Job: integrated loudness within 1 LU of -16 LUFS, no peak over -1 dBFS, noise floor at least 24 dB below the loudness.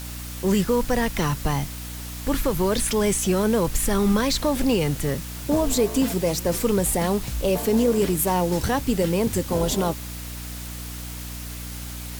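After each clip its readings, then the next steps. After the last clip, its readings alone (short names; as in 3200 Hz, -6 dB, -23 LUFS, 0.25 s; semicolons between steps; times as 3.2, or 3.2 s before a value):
hum 60 Hz; harmonics up to 300 Hz; hum level -33 dBFS; noise floor -34 dBFS; noise floor target -47 dBFS; loudness -23.0 LUFS; peak -10.5 dBFS; loudness target -16.0 LUFS
-> notches 60/120/180/240/300 Hz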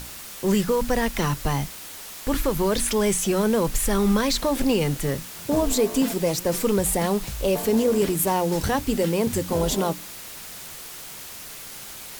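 hum none; noise floor -39 dBFS; noise floor target -47 dBFS
-> denoiser 8 dB, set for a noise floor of -39 dBFS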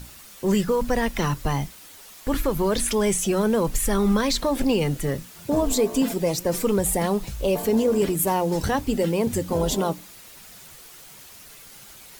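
noise floor -46 dBFS; noise floor target -48 dBFS
-> denoiser 6 dB, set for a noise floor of -46 dBFS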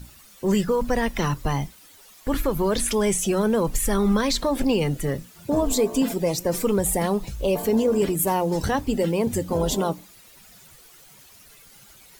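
noise floor -50 dBFS; loudness -23.5 LUFS; peak -10.5 dBFS; loudness target -16.0 LUFS
-> gain +7.5 dB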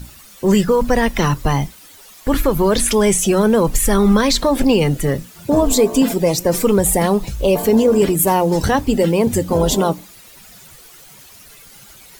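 loudness -16.0 LUFS; peak -3.0 dBFS; noise floor -43 dBFS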